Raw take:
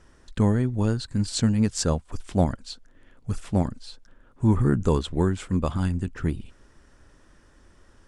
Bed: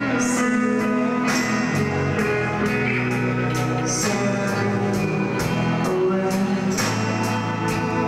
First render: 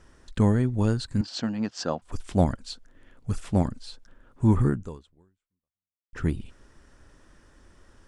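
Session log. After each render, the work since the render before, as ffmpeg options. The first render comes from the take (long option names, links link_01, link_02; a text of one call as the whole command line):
ffmpeg -i in.wav -filter_complex "[0:a]asettb=1/sr,asplit=3[link_01][link_02][link_03];[link_01]atrim=end=1.214[link_04];[link_02]atrim=start=1.21:end=2.02,asetpts=PTS-STARTPTS,afade=type=in:duration=0.004:curve=qsin,afade=type=out:start_time=0.806:duration=0.004:curve=qsin,highpass=280,equalizer=frequency=430:width_type=q:width=4:gain=-7,equalizer=frequency=710:width_type=q:width=4:gain=4,equalizer=frequency=2200:width_type=q:width=4:gain=-6,equalizer=frequency=3800:width_type=q:width=4:gain=-5,lowpass=frequency=5000:width=0.5412,lowpass=frequency=5000:width=1.3066[link_05];[link_03]atrim=start=2.016[link_06];[link_04][link_05]acrossfade=duration=0.004:curve1=hsin:curve2=qsin[link_07];[link_07][link_06]acrossfade=duration=0.004:curve1=qsin:curve2=hsin,asplit=2[link_08][link_09];[link_08]atrim=end=6.13,asetpts=PTS-STARTPTS,afade=type=out:start_time=4.65:duration=1.48:curve=exp[link_10];[link_09]atrim=start=6.13,asetpts=PTS-STARTPTS,afade=type=in:duration=0.004:curve=hsin[link_11];[link_10][link_11]concat=n=2:v=0:a=1" out.wav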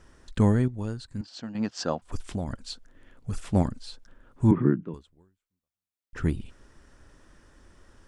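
ffmpeg -i in.wav -filter_complex "[0:a]asettb=1/sr,asplit=3[link_01][link_02][link_03];[link_01]atrim=end=2.284[link_04];[link_02]atrim=start=2.28:end=3.33,asetpts=PTS-STARTPTS,afade=type=in:duration=0.004:curve=qsin,afade=type=out:start_time=1.046:duration=0.004:curve=qsin,acompressor=threshold=-25dB:ratio=12:attack=3.2:release=140:knee=1:detection=peak[link_05];[link_03]atrim=start=3.326[link_06];[link_04][link_05]acrossfade=duration=0.004:curve1=hsin:curve2=qsin[link_07];[link_07][link_06]acrossfade=duration=0.004:curve1=qsin:curve2=hsin,asettb=1/sr,asplit=3[link_08][link_09][link_10];[link_08]atrim=end=4.514[link_11];[link_09]atrim=start=4.51:end=4.94,asetpts=PTS-STARTPTS,afade=type=in:duration=0.004:curve=qsin,afade=type=out:start_time=0.426:duration=0.004:curve=qsin,highpass=frequency=160:width=0.5412,highpass=frequency=160:width=1.3066,equalizer=frequency=160:width_type=q:width=4:gain=9,equalizer=frequency=320:width_type=q:width=4:gain=9,equalizer=frequency=500:width_type=q:width=4:gain=-4,equalizer=frequency=790:width_type=q:width=4:gain=-8,equalizer=frequency=1200:width_type=q:width=4:gain=-3,lowpass=frequency=2800:width=0.5412,lowpass=frequency=2800:width=1.3066[link_12];[link_10]atrim=start=4.936[link_13];[link_11][link_12]acrossfade=duration=0.004:curve1=hsin:curve2=qsin[link_14];[link_14][link_13]acrossfade=duration=0.004:curve1=qsin:curve2=hsin,asplit=3[link_15][link_16][link_17];[link_15]atrim=end=0.682[link_18];[link_16]atrim=start=0.678:end=1.552,asetpts=PTS-STARTPTS,volume=-9dB[link_19];[link_17]atrim=start=1.548[link_20];[link_18][link_19]acrossfade=duration=0.004:curve1=hsin:curve2=hsin[link_21];[link_21][link_20]acrossfade=duration=0.004:curve1=hsin:curve2=hsin" out.wav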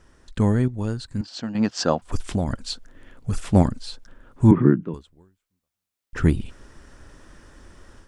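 ffmpeg -i in.wav -af "dynaudnorm=framelen=470:gausssize=3:maxgain=8dB" out.wav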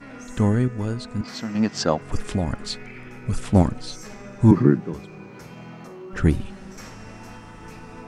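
ffmpeg -i in.wav -i bed.wav -filter_complex "[1:a]volume=-19dB[link_01];[0:a][link_01]amix=inputs=2:normalize=0" out.wav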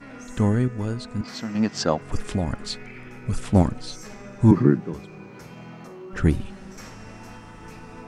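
ffmpeg -i in.wav -af "volume=-1dB" out.wav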